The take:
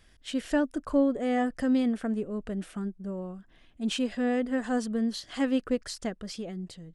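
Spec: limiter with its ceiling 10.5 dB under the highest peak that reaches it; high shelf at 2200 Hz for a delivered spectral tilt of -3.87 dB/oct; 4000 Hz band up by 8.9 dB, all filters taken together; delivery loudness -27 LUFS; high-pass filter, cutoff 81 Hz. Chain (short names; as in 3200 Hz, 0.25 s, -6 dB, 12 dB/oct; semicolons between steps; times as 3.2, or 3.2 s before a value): HPF 81 Hz; high shelf 2200 Hz +8.5 dB; bell 4000 Hz +3.5 dB; gain +4.5 dB; limiter -17.5 dBFS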